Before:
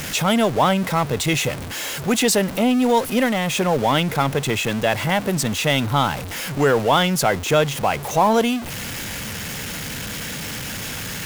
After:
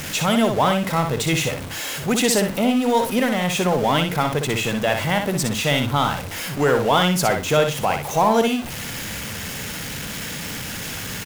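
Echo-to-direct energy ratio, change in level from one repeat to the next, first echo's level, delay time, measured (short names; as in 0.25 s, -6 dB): -6.0 dB, -15.0 dB, -6.0 dB, 61 ms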